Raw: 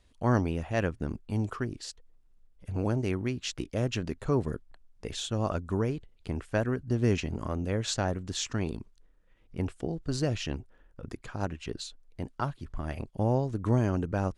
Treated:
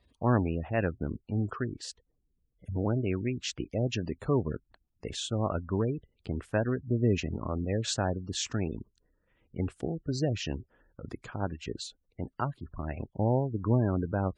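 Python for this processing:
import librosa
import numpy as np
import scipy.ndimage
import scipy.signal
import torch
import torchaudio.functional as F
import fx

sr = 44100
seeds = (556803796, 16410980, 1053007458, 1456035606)

y = scipy.signal.sosfilt(scipy.signal.butter(2, 49.0, 'highpass', fs=sr, output='sos'), x)
y = fx.spec_gate(y, sr, threshold_db=-25, keep='strong')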